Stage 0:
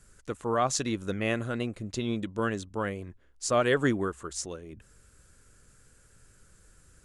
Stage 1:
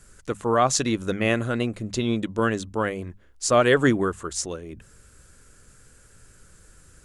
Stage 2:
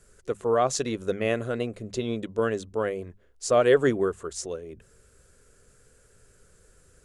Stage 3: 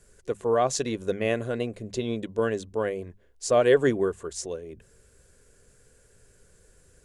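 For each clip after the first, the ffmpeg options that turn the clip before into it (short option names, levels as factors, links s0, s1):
-af "bandreject=f=50:t=h:w=6,bandreject=f=100:t=h:w=6,bandreject=f=150:t=h:w=6,bandreject=f=200:t=h:w=6,volume=2.11"
-af "superequalizer=7b=2.51:8b=1.78,volume=0.473"
-af "bandreject=f=1300:w=7.1"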